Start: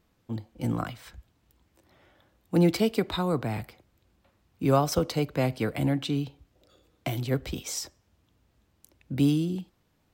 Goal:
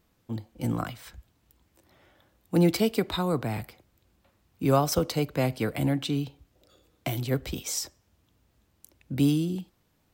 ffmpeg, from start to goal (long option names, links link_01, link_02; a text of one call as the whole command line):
ffmpeg -i in.wav -af "highshelf=frequency=7400:gain=6" out.wav